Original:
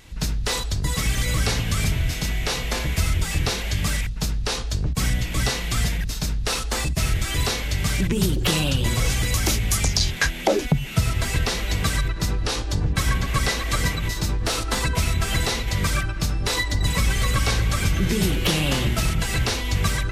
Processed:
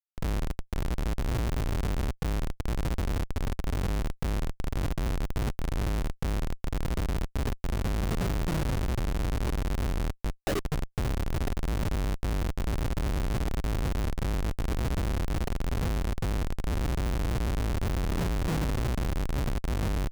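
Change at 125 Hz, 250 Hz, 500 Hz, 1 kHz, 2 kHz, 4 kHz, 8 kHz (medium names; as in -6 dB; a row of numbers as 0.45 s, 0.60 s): -7.0 dB, -6.0 dB, -6.5 dB, -8.0 dB, -14.0 dB, -17.5 dB, -18.0 dB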